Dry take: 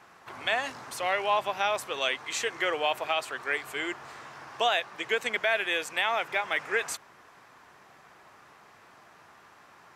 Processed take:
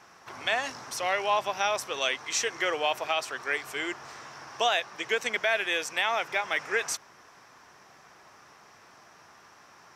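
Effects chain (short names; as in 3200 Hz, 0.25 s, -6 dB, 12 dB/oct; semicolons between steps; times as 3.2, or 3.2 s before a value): bell 5600 Hz +11.5 dB 0.33 oct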